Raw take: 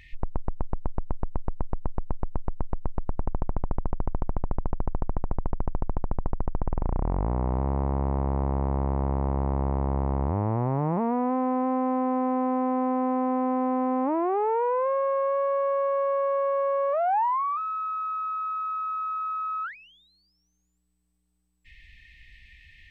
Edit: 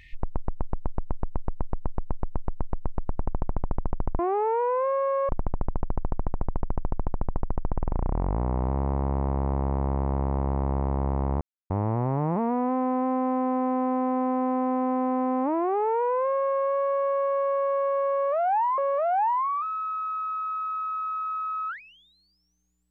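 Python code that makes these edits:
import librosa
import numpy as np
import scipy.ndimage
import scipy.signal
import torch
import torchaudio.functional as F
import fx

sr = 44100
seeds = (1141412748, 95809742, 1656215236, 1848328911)

y = fx.edit(x, sr, fx.insert_silence(at_s=10.31, length_s=0.29),
    fx.duplicate(start_s=14.21, length_s=1.1, to_s=4.19),
    fx.repeat(start_s=16.73, length_s=0.66, count=2), tone=tone)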